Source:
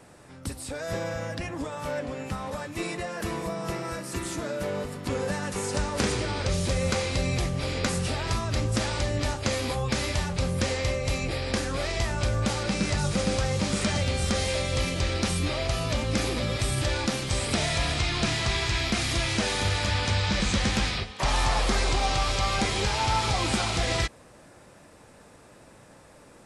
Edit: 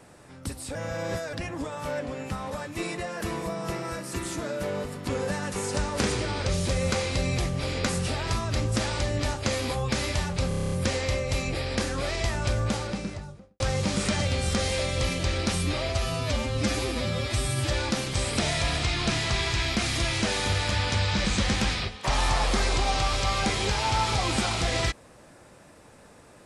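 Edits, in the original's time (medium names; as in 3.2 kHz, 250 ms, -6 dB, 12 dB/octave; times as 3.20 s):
0.75–1.33 s: reverse
10.48 s: stutter 0.03 s, 9 plays
12.28–13.36 s: studio fade out
15.65–16.86 s: stretch 1.5×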